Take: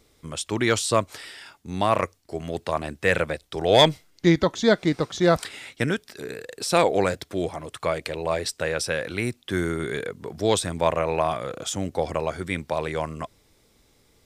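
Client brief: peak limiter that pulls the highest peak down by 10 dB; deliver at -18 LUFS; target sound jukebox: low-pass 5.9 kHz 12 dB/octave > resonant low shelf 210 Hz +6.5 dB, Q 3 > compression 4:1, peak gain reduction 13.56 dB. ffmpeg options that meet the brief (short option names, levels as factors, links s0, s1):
-af "alimiter=limit=0.158:level=0:latency=1,lowpass=5900,lowshelf=f=210:t=q:w=3:g=6.5,acompressor=threshold=0.0316:ratio=4,volume=6.31"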